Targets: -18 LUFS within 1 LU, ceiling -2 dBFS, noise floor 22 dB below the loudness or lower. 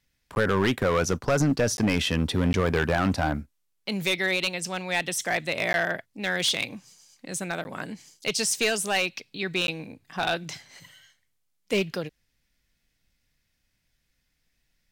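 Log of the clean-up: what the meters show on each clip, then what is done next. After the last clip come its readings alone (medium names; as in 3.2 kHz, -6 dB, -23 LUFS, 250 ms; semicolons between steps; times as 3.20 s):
clipped samples 1.1%; clipping level -17.0 dBFS; dropouts 6; longest dropout 11 ms; loudness -26.0 LUFS; peak level -17.0 dBFS; loudness target -18.0 LUFS
-> clip repair -17 dBFS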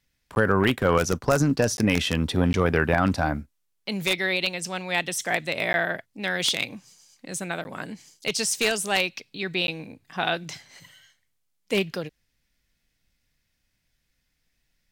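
clipped samples 0.0%; dropouts 6; longest dropout 11 ms
-> interpolate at 0.35/1.77/2.53/5.73/7.64/9.67 s, 11 ms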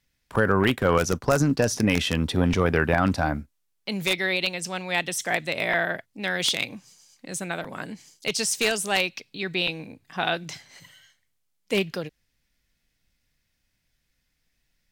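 dropouts 0; loudness -25.0 LUFS; peak level -8.0 dBFS; loudness target -18.0 LUFS
-> trim +7 dB; peak limiter -2 dBFS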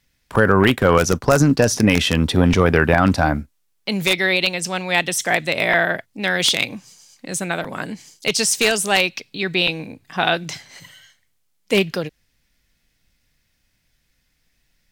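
loudness -18.0 LUFS; peak level -2.0 dBFS; noise floor -67 dBFS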